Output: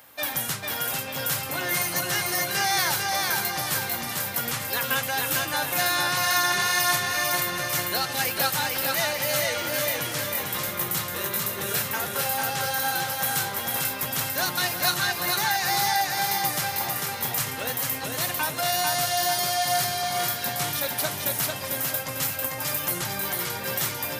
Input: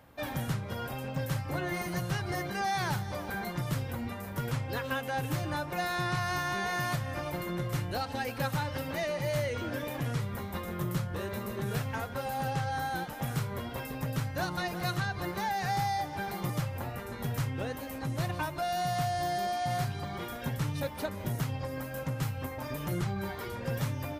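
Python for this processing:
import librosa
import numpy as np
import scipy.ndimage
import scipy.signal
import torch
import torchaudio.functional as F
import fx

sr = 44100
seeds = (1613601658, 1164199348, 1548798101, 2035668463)

y = fx.tilt_eq(x, sr, slope=4.0)
y = fx.echo_feedback(y, sr, ms=447, feedback_pct=48, wet_db=-3.0)
y = y * 10.0 ** (5.0 / 20.0)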